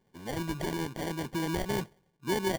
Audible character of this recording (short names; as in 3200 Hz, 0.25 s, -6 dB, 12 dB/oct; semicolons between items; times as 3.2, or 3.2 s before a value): aliases and images of a low sample rate 1300 Hz, jitter 0%